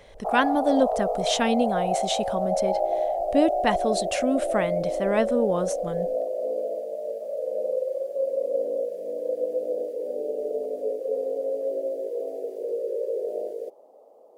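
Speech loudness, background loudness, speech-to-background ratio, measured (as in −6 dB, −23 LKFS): −26.5 LKFS, −28.0 LKFS, 1.5 dB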